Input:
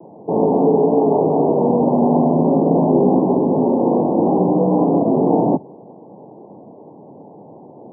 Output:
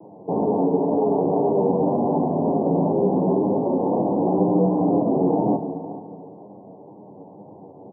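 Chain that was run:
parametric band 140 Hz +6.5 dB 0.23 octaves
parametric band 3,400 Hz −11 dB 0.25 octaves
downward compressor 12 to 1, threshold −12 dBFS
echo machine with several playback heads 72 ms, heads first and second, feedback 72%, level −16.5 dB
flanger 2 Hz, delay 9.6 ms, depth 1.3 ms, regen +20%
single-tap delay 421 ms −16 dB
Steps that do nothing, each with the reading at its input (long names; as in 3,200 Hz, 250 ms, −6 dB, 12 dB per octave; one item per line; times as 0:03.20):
parametric band 3,400 Hz: nothing at its input above 1,100 Hz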